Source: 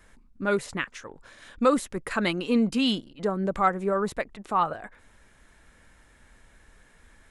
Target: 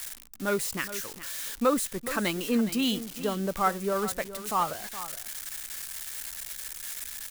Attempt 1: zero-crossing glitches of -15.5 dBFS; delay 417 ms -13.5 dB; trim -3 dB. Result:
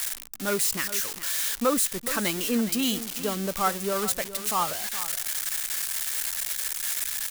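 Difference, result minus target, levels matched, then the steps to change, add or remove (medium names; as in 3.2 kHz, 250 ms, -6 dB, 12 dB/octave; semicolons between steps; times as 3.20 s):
zero-crossing glitches: distortion +8 dB
change: zero-crossing glitches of -24 dBFS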